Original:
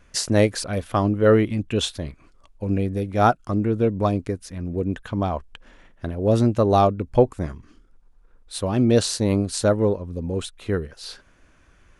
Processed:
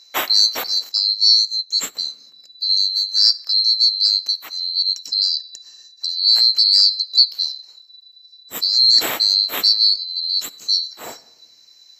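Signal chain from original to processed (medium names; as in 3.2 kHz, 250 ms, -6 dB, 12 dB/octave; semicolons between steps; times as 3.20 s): split-band scrambler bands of 4 kHz; high-pass 270 Hz 12 dB/octave; in parallel at +0.5 dB: peak limiter -11 dBFS, peak gain reduction 8 dB; 5.36–6.19 s: on the sum: small resonant body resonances 1.8/2.7 kHz, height 15 dB -> 12 dB; on a send at -17.5 dB: reverberation RT60 1.0 s, pre-delay 6 ms; 0.89–1.97 s: on the sum: upward expansion 1.5:1, over -33 dBFS; trim -1.5 dB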